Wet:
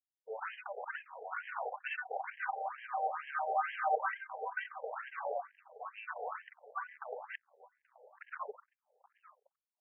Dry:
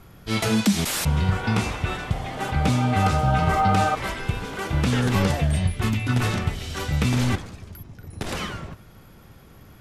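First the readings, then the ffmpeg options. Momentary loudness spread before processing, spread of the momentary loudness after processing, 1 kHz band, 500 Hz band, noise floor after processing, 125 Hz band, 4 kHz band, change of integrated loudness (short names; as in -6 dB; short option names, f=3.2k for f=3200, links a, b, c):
12 LU, 14 LU, -10.5 dB, -12.0 dB, under -85 dBFS, under -40 dB, -27.0 dB, -16.5 dB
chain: -filter_complex "[0:a]afftfilt=real='re*gte(hypot(re,im),0.0794)':imag='im*gte(hypot(re,im),0.0794)':win_size=1024:overlap=0.75,agate=range=-17dB:threshold=-40dB:ratio=16:detection=peak,areverse,acompressor=threshold=-31dB:ratio=12,areverse,aeval=exprs='0.0596*(cos(1*acos(clip(val(0)/0.0596,-1,1)))-cos(1*PI/2))+0.00531*(cos(2*acos(clip(val(0)/0.0596,-1,1)))-cos(2*PI/2))+0.0106*(cos(4*acos(clip(val(0)/0.0596,-1,1)))-cos(4*PI/2))+0.00944*(cos(5*acos(clip(val(0)/0.0596,-1,1)))-cos(5*PI/2))':c=same,asplit=2[a][b];[b]adelay=830,lowpass=f=1.3k:p=1,volume=-13.5dB,asplit=2[c][d];[d]adelay=830,lowpass=f=1.3k:p=1,volume=0.28,asplit=2[e][f];[f]adelay=830,lowpass=f=1.3k:p=1,volume=0.28[g];[a][c][e][g]amix=inputs=4:normalize=0,asplit=2[h][i];[i]aeval=exprs='sgn(val(0))*max(abs(val(0))-0.00355,0)':c=same,volume=-7.5dB[j];[h][j]amix=inputs=2:normalize=0,adynamicsmooth=sensitivity=5.5:basefreq=580,afftfilt=real='re*between(b*sr/1024,590*pow(2300/590,0.5+0.5*sin(2*PI*2.2*pts/sr))/1.41,590*pow(2300/590,0.5+0.5*sin(2*PI*2.2*pts/sr))*1.41)':imag='im*between(b*sr/1024,590*pow(2300/590,0.5+0.5*sin(2*PI*2.2*pts/sr))/1.41,590*pow(2300/590,0.5+0.5*sin(2*PI*2.2*pts/sr))*1.41)':win_size=1024:overlap=0.75,volume=2.5dB"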